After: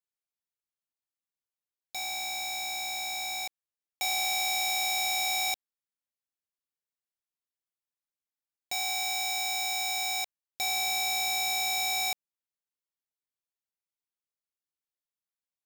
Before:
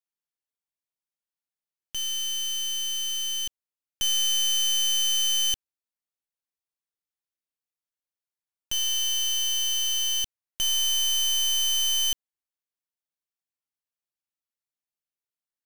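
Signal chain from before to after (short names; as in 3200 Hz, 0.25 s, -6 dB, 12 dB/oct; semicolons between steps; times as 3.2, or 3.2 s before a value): polarity switched at an audio rate 750 Hz; gain -5.5 dB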